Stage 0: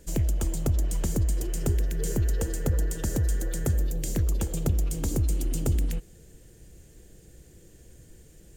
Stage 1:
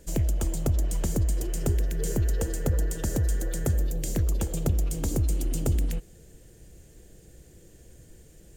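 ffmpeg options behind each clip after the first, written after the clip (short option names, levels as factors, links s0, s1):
-af "equalizer=f=630:w=1.9:g=2.5"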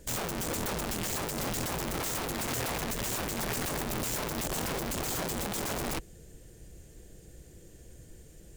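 -af "aeval=exprs='(mod(26.6*val(0)+1,2)-1)/26.6':c=same"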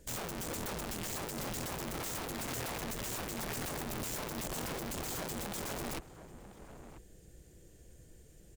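-filter_complex "[0:a]asplit=2[s0][s1];[s1]adelay=991.3,volume=0.251,highshelf=f=4000:g=-22.3[s2];[s0][s2]amix=inputs=2:normalize=0,volume=0.501"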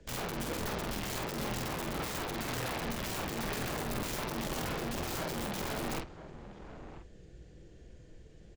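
-filter_complex "[0:a]acrossover=split=140|430|5500[s0][s1][s2][s3];[s3]acrusher=bits=3:dc=4:mix=0:aa=0.000001[s4];[s0][s1][s2][s4]amix=inputs=4:normalize=0,flanger=delay=4.6:depth=2.6:regen=-85:speed=1.4:shape=triangular,asplit=2[s5][s6];[s6]adelay=48,volume=0.596[s7];[s5][s7]amix=inputs=2:normalize=0,volume=2.24"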